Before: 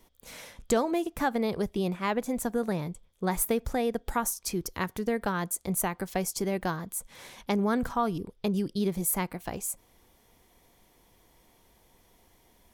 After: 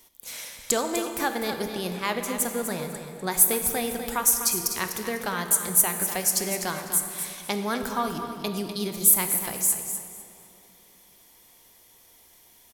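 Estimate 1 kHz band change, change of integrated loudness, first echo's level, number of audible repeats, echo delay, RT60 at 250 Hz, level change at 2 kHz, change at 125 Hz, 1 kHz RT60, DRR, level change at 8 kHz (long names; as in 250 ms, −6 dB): +1.5 dB, +6.0 dB, −9.5 dB, 2, 249 ms, 3.2 s, +5.0 dB, −3.0 dB, 2.7 s, 4.5 dB, +12.0 dB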